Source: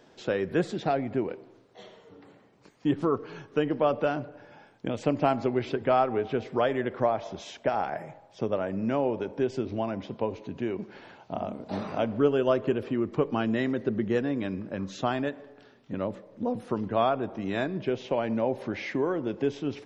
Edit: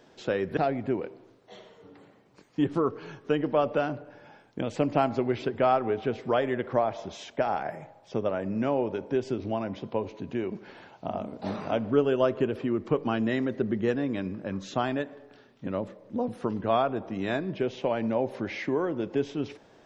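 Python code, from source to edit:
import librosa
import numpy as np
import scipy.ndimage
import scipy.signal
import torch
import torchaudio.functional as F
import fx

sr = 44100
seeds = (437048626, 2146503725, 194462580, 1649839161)

y = fx.edit(x, sr, fx.cut(start_s=0.57, length_s=0.27), tone=tone)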